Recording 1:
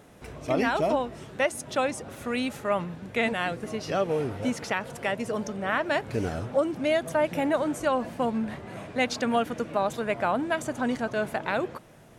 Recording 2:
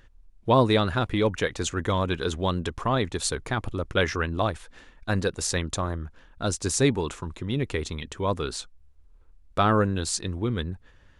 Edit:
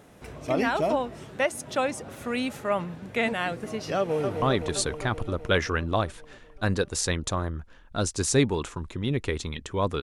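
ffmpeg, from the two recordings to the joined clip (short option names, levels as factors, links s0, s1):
-filter_complex "[0:a]apad=whole_dur=10.02,atrim=end=10.02,atrim=end=4.422[s0];[1:a]atrim=start=2.878:end=8.48[s1];[s0][s1]acrossfade=d=0.004:c1=hsin:c2=hsin,asplit=2[s2][s3];[s3]afade=t=in:st=3.97:d=0.01,afade=t=out:st=4.42:d=0.01,aecho=0:1:260|520|780|1040|1300|1560|1820|2080|2340|2600|2860|3120:0.530884|0.371619|0.260133|0.182093|0.127465|0.0892257|0.062458|0.0437206|0.0306044|0.0214231|0.0149962|0.0104973[s4];[s2][s4]amix=inputs=2:normalize=0"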